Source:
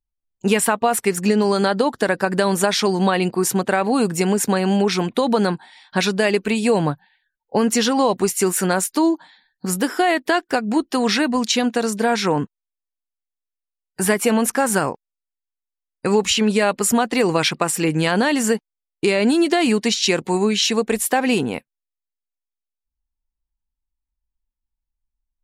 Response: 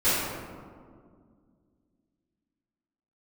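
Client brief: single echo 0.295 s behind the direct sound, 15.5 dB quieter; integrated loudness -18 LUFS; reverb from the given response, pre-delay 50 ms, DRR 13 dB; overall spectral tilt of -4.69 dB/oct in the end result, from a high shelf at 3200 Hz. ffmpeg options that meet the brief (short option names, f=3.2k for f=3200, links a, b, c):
-filter_complex "[0:a]highshelf=f=3.2k:g=-5.5,aecho=1:1:295:0.168,asplit=2[a][b];[1:a]atrim=start_sample=2205,adelay=50[c];[b][c]afir=irnorm=-1:irlink=0,volume=-28.5dB[d];[a][d]amix=inputs=2:normalize=0,volume=1.5dB"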